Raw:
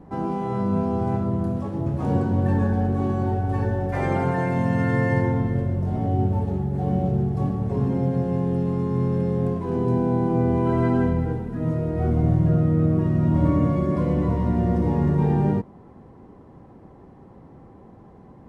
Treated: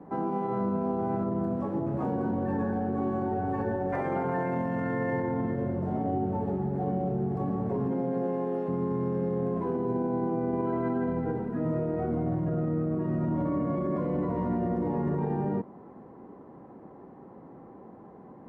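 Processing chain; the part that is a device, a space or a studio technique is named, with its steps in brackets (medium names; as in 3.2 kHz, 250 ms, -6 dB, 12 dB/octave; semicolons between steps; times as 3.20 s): 7.91–8.67 s: high-pass 140 Hz -> 420 Hz 12 dB/octave; DJ mixer with the lows and highs turned down (three-band isolator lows -17 dB, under 170 Hz, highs -15 dB, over 2 kHz; peak limiter -22.5 dBFS, peak gain reduction 9.5 dB); trim +1 dB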